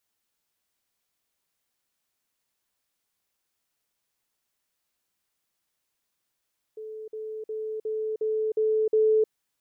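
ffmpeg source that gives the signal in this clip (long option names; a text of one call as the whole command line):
ffmpeg -f lavfi -i "aevalsrc='pow(10,(-35.5+3*floor(t/0.36))/20)*sin(2*PI*435*t)*clip(min(mod(t,0.36),0.31-mod(t,0.36))/0.005,0,1)':duration=2.52:sample_rate=44100" out.wav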